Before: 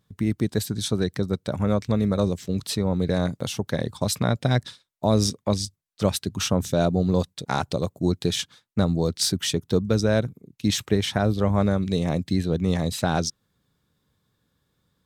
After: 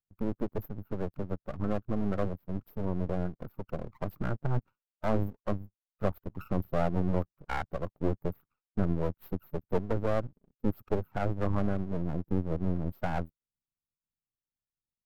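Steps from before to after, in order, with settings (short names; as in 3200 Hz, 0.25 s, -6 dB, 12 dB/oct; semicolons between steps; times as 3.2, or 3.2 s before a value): per-bin expansion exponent 1.5; brick-wall FIR band-stop 1500–13000 Hz; half-wave rectifier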